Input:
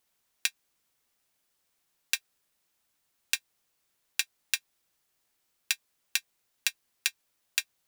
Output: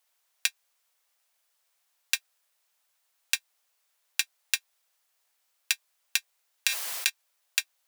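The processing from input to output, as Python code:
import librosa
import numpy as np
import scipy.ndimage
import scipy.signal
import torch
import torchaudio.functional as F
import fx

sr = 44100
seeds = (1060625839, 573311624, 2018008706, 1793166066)

y = scipy.signal.sosfilt(scipy.signal.butter(4, 530.0, 'highpass', fs=sr, output='sos'), x)
y = fx.sustainer(y, sr, db_per_s=41.0, at=(6.67, 7.08), fade=0.02)
y = y * librosa.db_to_amplitude(2.0)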